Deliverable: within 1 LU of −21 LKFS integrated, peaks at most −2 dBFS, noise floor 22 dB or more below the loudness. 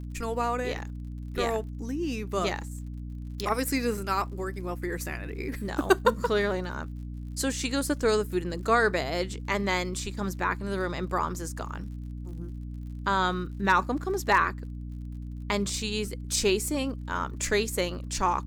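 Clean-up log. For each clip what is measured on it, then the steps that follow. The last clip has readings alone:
crackle rate 45 per second; mains hum 60 Hz; hum harmonics up to 300 Hz; level of the hum −34 dBFS; integrated loudness −29.0 LKFS; sample peak −7.5 dBFS; target loudness −21.0 LKFS
→ click removal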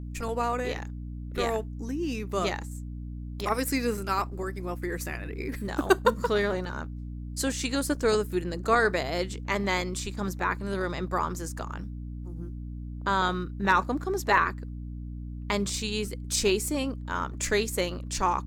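crackle rate 1.6 per second; mains hum 60 Hz; hum harmonics up to 300 Hz; level of the hum −34 dBFS
→ hum removal 60 Hz, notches 5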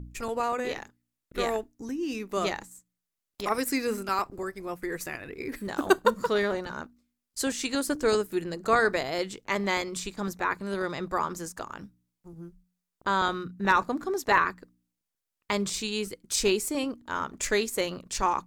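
mains hum none found; integrated loudness −29.0 LKFS; sample peak −7.5 dBFS; target loudness −21.0 LKFS
→ level +8 dB
brickwall limiter −2 dBFS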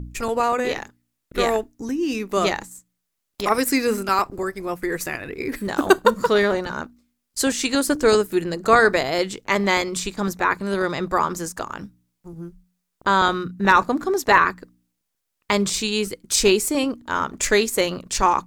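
integrated loudness −21.0 LKFS; sample peak −2.0 dBFS; background noise floor −78 dBFS

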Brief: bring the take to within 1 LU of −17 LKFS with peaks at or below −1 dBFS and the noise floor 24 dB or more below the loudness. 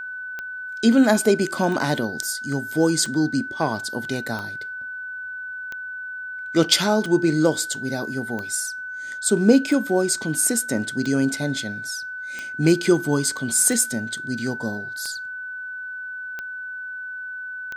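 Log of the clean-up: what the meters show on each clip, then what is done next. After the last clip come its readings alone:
number of clicks 14; interfering tone 1,500 Hz; level of the tone −30 dBFS; integrated loudness −23.0 LKFS; sample peak −3.0 dBFS; target loudness −17.0 LKFS
→ click removal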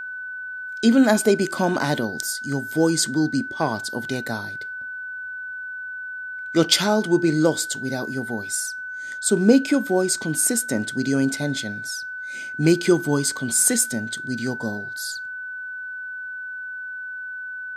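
number of clicks 0; interfering tone 1,500 Hz; level of the tone −30 dBFS
→ notch filter 1,500 Hz, Q 30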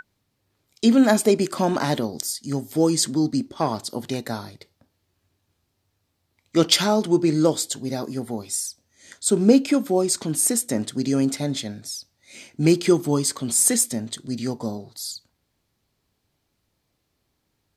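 interfering tone none found; integrated loudness −22.0 LKFS; sample peak −3.0 dBFS; target loudness −17.0 LKFS
→ level +5 dB
brickwall limiter −1 dBFS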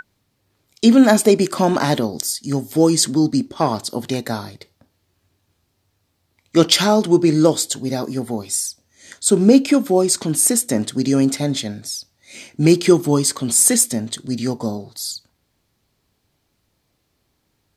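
integrated loudness −17.0 LKFS; sample peak −1.0 dBFS; background noise floor −69 dBFS

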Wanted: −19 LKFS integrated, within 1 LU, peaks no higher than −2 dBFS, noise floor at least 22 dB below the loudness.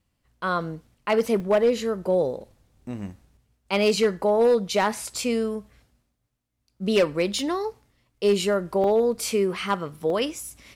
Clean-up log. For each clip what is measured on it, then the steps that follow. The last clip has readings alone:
share of clipped samples 0.4%; peaks flattened at −13.5 dBFS; number of dropouts 3; longest dropout 1.9 ms; integrated loudness −24.0 LKFS; sample peak −13.5 dBFS; target loudness −19.0 LKFS
→ clipped peaks rebuilt −13.5 dBFS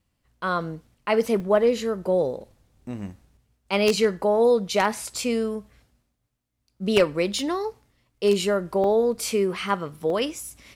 share of clipped samples 0.0%; number of dropouts 3; longest dropout 1.9 ms
→ repair the gap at 0:01.40/0:08.84/0:10.10, 1.9 ms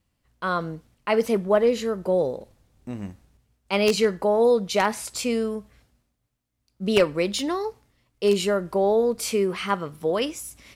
number of dropouts 0; integrated loudness −23.5 LKFS; sample peak −4.5 dBFS; target loudness −19.0 LKFS
→ level +4.5 dB
brickwall limiter −2 dBFS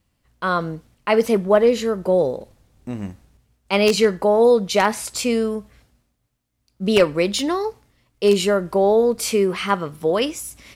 integrated loudness −19.5 LKFS; sample peak −2.0 dBFS; background noise floor −70 dBFS

